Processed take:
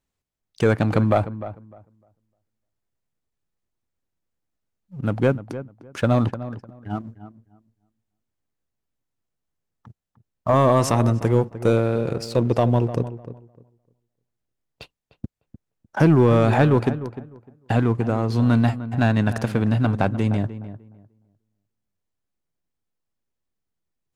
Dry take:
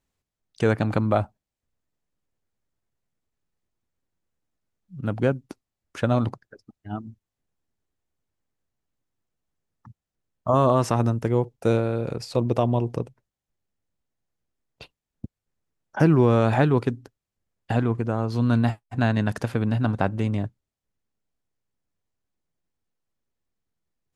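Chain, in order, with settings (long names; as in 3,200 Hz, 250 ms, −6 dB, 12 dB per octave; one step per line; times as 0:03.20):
0:10.72–0:11.55: high-shelf EQ 5,600 Hz +5 dB
leveller curve on the samples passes 1
feedback echo with a low-pass in the loop 302 ms, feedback 20%, low-pass 1,600 Hz, level −13 dB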